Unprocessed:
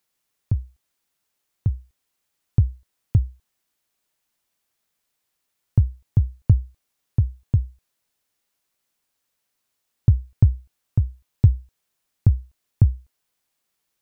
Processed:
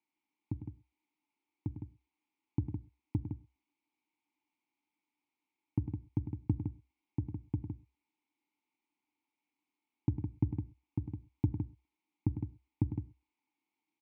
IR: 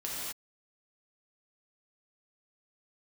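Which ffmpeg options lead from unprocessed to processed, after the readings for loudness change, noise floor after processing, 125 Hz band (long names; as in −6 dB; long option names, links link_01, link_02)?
−16.0 dB, below −85 dBFS, −16.5 dB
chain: -filter_complex "[0:a]asplit=3[link_01][link_02][link_03];[link_01]bandpass=frequency=300:width_type=q:width=8,volume=0dB[link_04];[link_02]bandpass=frequency=870:width_type=q:width=8,volume=-6dB[link_05];[link_03]bandpass=frequency=2240:width_type=q:width=8,volume=-9dB[link_06];[link_04][link_05][link_06]amix=inputs=3:normalize=0,aecho=1:1:102|160.3:0.316|0.447,asplit=2[link_07][link_08];[1:a]atrim=start_sample=2205,asetrate=88200,aresample=44100,lowshelf=frequency=170:gain=7.5[link_09];[link_08][link_09]afir=irnorm=-1:irlink=0,volume=-17.5dB[link_10];[link_07][link_10]amix=inputs=2:normalize=0,volume=6dB"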